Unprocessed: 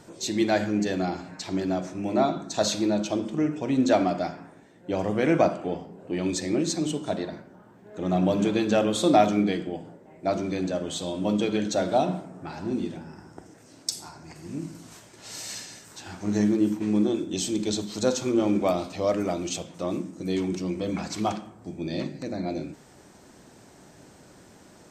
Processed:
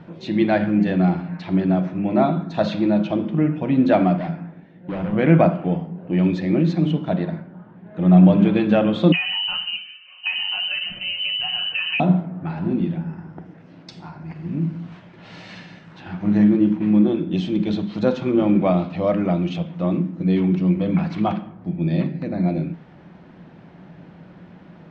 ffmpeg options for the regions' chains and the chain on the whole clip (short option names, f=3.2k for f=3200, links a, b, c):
-filter_complex "[0:a]asettb=1/sr,asplit=3[a][b][c];[a]atrim=end=4.164[d];[b]atrim=start=4.16:end=5.13,asetpts=PTS-STARTPTS,afade=t=in:d=0.004:c=qsin,afade=t=out:st=0.966:d=0.004:c=qsin,equalizer=f=1.1k:w=1.6:g=-4.5,asoftclip=type=hard:threshold=-30.5dB[e];[c]atrim=start=5.126[f];[d][e]acrossfade=d=0.004:c1=hsin:c2=qsin[g];[g][f]acrossfade=d=0.004:c1=qsin:c2=hsin,asettb=1/sr,asplit=3[h][i][j];[h]atrim=end=9.124[k];[i]atrim=start=9.12:end=12,asetpts=PTS-STARTPTS,afade=t=in:d=0.004:c=qsin,afade=t=out:st=2.876:d=0.004:c=qsin,aecho=1:1:5.7:0.77,atrim=end_sample=127008,acompressor=threshold=-22dB:ratio=12:attack=3.2:release=140:knee=1:detection=peak,lowpass=f=2.7k:t=q:w=0.5098,lowpass=f=2.7k:t=q:w=0.6013,lowpass=f=2.7k:t=q:w=0.9,lowpass=f=2.7k:t=q:w=2.563,afreqshift=-3200[l];[j]atrim=start=11.996[m];[k][l]acrossfade=d=0.004:c1=hsin:c2=qsin[n];[n][m]acrossfade=d=0.004:c1=qsin:c2=hsin,lowpass=f=3.1k:w=0.5412,lowpass=f=3.1k:w=1.3066,equalizer=f=170:w=3.7:g=14.5,bandreject=f=420:w=12,volume=4dB"